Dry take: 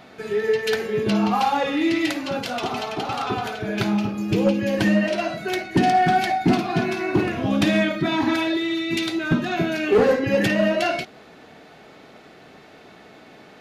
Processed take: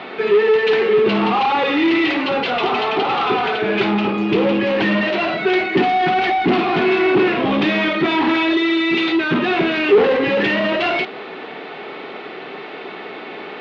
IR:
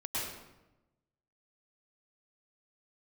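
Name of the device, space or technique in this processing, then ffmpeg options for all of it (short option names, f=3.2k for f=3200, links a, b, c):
overdrive pedal into a guitar cabinet: -filter_complex "[0:a]asplit=2[a][b];[b]highpass=f=720:p=1,volume=26dB,asoftclip=type=tanh:threshold=-9dB[c];[a][c]amix=inputs=2:normalize=0,lowpass=f=5k:p=1,volume=-6dB,highpass=92,equalizer=f=94:t=q:w=4:g=-9,equalizer=f=390:t=q:w=4:g=7,equalizer=f=640:t=q:w=4:g=-5,equalizer=f=1.6k:t=q:w=4:g=-5,lowpass=f=3.5k:w=0.5412,lowpass=f=3.5k:w=1.3066,volume=-1dB"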